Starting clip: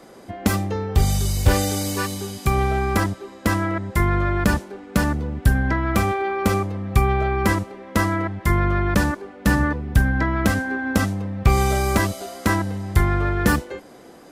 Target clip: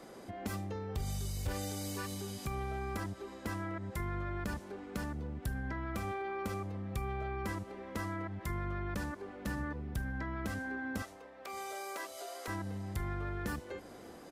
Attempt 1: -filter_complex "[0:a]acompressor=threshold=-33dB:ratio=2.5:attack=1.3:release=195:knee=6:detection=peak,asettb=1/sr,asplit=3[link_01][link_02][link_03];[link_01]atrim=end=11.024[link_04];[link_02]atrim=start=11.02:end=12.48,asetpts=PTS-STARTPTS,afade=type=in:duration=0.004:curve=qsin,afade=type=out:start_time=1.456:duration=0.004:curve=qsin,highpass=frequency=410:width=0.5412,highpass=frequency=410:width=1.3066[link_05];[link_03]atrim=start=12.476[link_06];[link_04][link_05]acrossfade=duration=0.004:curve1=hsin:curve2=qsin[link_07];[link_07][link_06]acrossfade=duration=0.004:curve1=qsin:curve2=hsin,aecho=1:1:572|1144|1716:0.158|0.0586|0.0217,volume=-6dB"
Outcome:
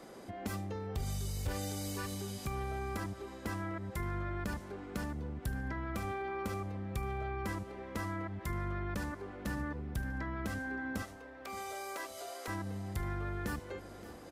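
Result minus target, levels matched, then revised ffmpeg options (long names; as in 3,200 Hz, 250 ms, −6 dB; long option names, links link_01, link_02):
echo-to-direct +9.5 dB
-filter_complex "[0:a]acompressor=threshold=-33dB:ratio=2.5:attack=1.3:release=195:knee=6:detection=peak,asettb=1/sr,asplit=3[link_01][link_02][link_03];[link_01]atrim=end=11.024[link_04];[link_02]atrim=start=11.02:end=12.48,asetpts=PTS-STARTPTS,afade=type=in:duration=0.004:curve=qsin,afade=type=out:start_time=1.456:duration=0.004:curve=qsin,highpass=frequency=410:width=0.5412,highpass=frequency=410:width=1.3066[link_05];[link_03]atrim=start=12.476[link_06];[link_04][link_05]acrossfade=duration=0.004:curve1=hsin:curve2=qsin[link_07];[link_07][link_06]acrossfade=duration=0.004:curve1=qsin:curve2=hsin,aecho=1:1:572|1144:0.0531|0.0196,volume=-6dB"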